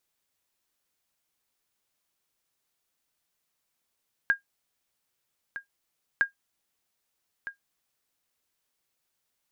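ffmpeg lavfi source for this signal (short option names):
-f lavfi -i "aevalsrc='0.211*(sin(2*PI*1620*mod(t,1.91))*exp(-6.91*mod(t,1.91)/0.12)+0.211*sin(2*PI*1620*max(mod(t,1.91)-1.26,0))*exp(-6.91*max(mod(t,1.91)-1.26,0)/0.12))':d=3.82:s=44100"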